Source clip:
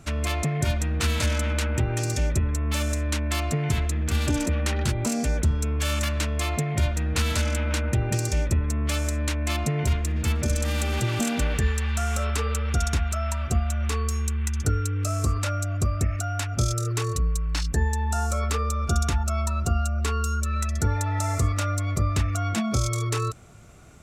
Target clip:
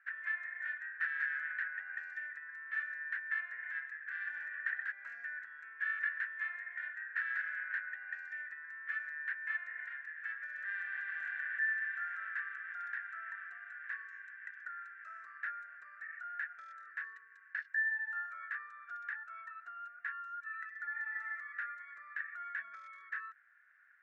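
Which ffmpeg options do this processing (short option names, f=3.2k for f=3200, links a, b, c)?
-af "asuperpass=centerf=1700:order=4:qfactor=6,volume=5.5dB"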